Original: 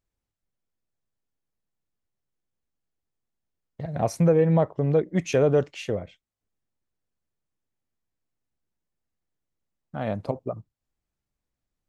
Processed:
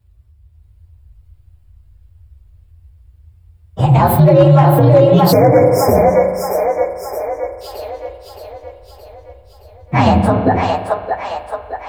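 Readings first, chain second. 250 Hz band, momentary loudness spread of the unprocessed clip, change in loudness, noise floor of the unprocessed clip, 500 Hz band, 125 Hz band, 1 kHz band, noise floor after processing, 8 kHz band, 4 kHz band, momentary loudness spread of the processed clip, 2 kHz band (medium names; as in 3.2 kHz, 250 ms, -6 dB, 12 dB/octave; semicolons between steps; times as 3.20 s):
+13.0 dB, 16 LU, +12.0 dB, under -85 dBFS, +13.5 dB, +15.5 dB, +21.5 dB, -48 dBFS, +11.5 dB, +16.0 dB, 17 LU, +14.5 dB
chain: frequency axis rescaled in octaves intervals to 124%; peaking EQ 6.1 kHz -9.5 dB 0.21 oct; in parallel at +3 dB: compression 6:1, threshold -30 dBFS, peak gain reduction 13 dB; on the sum: band noise 40–90 Hz -58 dBFS; bass shelf 91 Hz -6 dB; level rider gain up to 4 dB; on a send: two-band feedback delay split 460 Hz, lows 81 ms, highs 620 ms, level -6 dB; on the sum: spring tank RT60 1.9 s, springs 38 ms, chirp 40 ms, DRR 9 dB; hard clipper -7.5 dBFS, distortion -25 dB; spectral selection erased 5.32–7.61 s, 2.4–5 kHz; loudness maximiser +14 dB; trim -1 dB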